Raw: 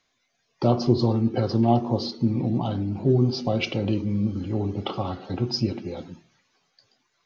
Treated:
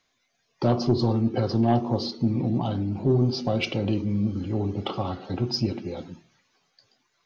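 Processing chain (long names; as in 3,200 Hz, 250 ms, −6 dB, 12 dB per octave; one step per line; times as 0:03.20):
soft clipping −11.5 dBFS, distortion −19 dB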